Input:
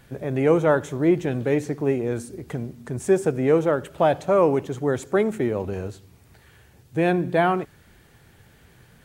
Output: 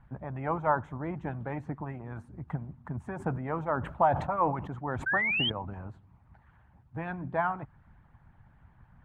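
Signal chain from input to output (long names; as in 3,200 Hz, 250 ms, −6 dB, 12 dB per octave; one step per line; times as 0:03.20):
high-shelf EQ 3,200 Hz −10.5 dB
harmonic and percussive parts rebalanced harmonic −14 dB
drawn EQ curve 140 Hz 0 dB, 440 Hz −20 dB, 910 Hz 0 dB, 5,500 Hz −27 dB
0:05.06–0:05.50: sound drawn into the spectrogram rise 1,500–3,300 Hz −33 dBFS
0:03.05–0:05.52: level that may fall only so fast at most 84 dB per second
level +4.5 dB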